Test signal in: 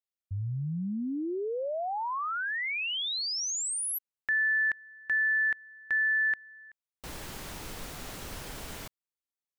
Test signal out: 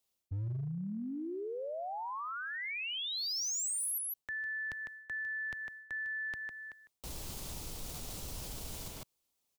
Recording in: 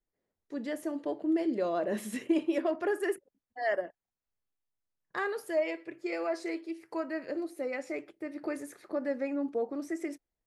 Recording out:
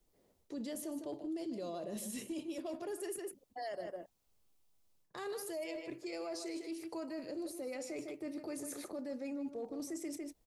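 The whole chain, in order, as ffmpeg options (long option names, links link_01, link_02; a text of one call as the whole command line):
ffmpeg -i in.wav -filter_complex "[0:a]equalizer=frequency=1700:width_type=o:width=0.89:gain=-9,aecho=1:1:153:0.224,acrossover=split=140|3800[link_01][link_02][link_03];[link_02]acompressor=threshold=-53dB:ratio=2:attack=3.8:release=266:knee=2.83:detection=peak[link_04];[link_01][link_04][link_03]amix=inputs=3:normalize=0,volume=32.5dB,asoftclip=hard,volume=-32.5dB,areverse,acompressor=threshold=-50dB:ratio=6:attack=0.15:release=298:knee=6:detection=peak,areverse,volume=13.5dB" out.wav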